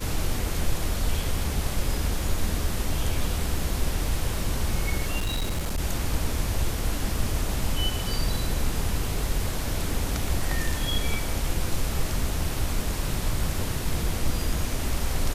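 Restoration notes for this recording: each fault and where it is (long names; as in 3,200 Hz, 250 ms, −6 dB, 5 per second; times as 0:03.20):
0:05.20–0:05.80: clipping −23 dBFS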